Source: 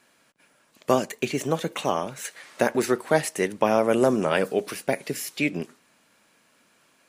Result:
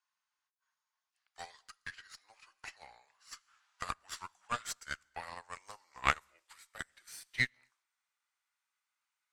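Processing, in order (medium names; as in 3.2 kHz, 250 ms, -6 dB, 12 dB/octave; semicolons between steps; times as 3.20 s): gliding tape speed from 63% -> 89%; high-pass 930 Hz 24 dB/octave; Chebyshev shaper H 3 -21 dB, 4 -16 dB, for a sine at -10.5 dBFS; on a send at -18 dB: reverberation, pre-delay 3 ms; on the sum: upward expansion 2.5:1, over -41 dBFS; trim +2 dB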